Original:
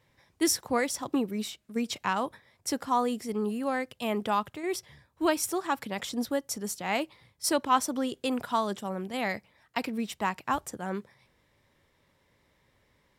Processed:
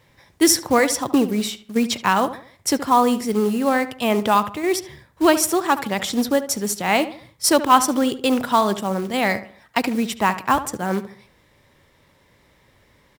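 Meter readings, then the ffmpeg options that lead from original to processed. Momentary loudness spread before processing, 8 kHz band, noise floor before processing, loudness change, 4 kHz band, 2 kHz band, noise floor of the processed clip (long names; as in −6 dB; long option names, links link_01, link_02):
8 LU, +10.5 dB, −70 dBFS, +10.5 dB, +10.5 dB, +10.5 dB, −58 dBFS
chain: -filter_complex "[0:a]acontrast=67,acrusher=bits=5:mode=log:mix=0:aa=0.000001,asplit=2[link_01][link_02];[link_02]adelay=73,lowpass=frequency=2400:poles=1,volume=-12.5dB,asplit=2[link_03][link_04];[link_04]adelay=73,lowpass=frequency=2400:poles=1,volume=0.38,asplit=2[link_05][link_06];[link_06]adelay=73,lowpass=frequency=2400:poles=1,volume=0.38,asplit=2[link_07][link_08];[link_08]adelay=73,lowpass=frequency=2400:poles=1,volume=0.38[link_09];[link_01][link_03][link_05][link_07][link_09]amix=inputs=5:normalize=0,volume=4dB"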